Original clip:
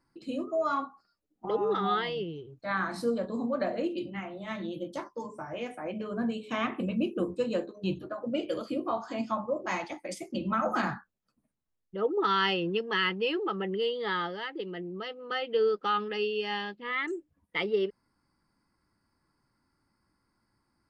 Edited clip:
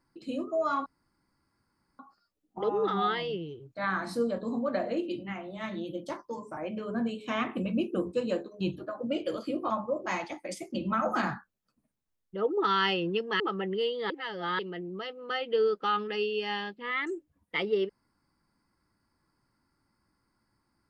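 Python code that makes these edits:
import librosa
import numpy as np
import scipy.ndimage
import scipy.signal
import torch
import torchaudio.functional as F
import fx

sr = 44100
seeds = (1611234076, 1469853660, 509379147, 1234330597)

y = fx.edit(x, sr, fx.insert_room_tone(at_s=0.86, length_s=1.13),
    fx.cut(start_s=5.44, length_s=0.36),
    fx.cut(start_s=8.93, length_s=0.37),
    fx.cut(start_s=13.0, length_s=0.41),
    fx.reverse_span(start_s=14.11, length_s=0.49), tone=tone)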